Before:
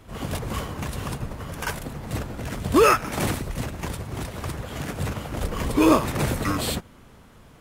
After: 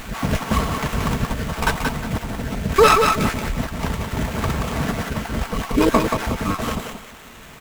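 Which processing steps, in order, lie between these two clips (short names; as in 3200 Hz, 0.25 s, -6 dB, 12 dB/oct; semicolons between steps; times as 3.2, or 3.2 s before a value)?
random spectral dropouts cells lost 26%; in parallel at -6.5 dB: requantised 6-bit, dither triangular; on the sum: vocal rider 2 s; bell 430 Hz -4.5 dB 1.2 oct; comb 4.5 ms, depth 40%; on a send: thinning echo 0.179 s, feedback 27%, high-pass 400 Hz, level -4 dB; on the sum: running maximum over 9 samples; gain +1.5 dB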